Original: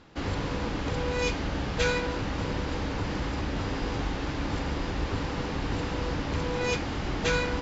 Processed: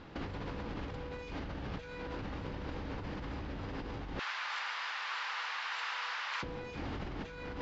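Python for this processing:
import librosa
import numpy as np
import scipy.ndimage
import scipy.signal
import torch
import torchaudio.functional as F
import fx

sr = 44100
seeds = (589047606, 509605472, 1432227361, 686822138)

y = fx.highpass(x, sr, hz=1100.0, slope=24, at=(4.19, 6.43))
y = fx.over_compress(y, sr, threshold_db=-37.0, ratio=-1.0)
y = fx.air_absorb(y, sr, metres=140.0)
y = F.gain(torch.from_numpy(y), -2.5).numpy()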